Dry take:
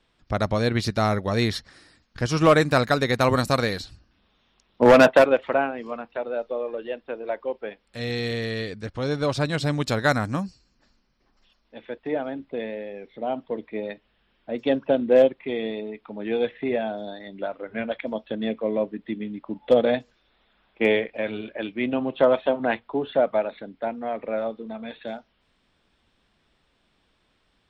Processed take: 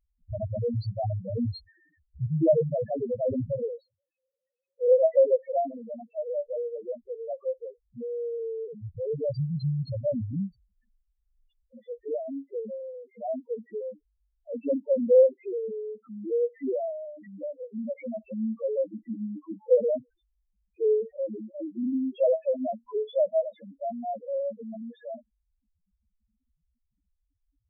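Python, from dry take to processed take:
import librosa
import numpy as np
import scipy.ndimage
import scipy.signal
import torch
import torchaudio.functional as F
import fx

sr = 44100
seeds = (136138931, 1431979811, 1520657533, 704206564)

y = fx.vowel_filter(x, sr, vowel='e', at=(3.76, 5.04))
y = fx.spec_topn(y, sr, count=1)
y = y * 10.0 ** (4.0 / 20.0)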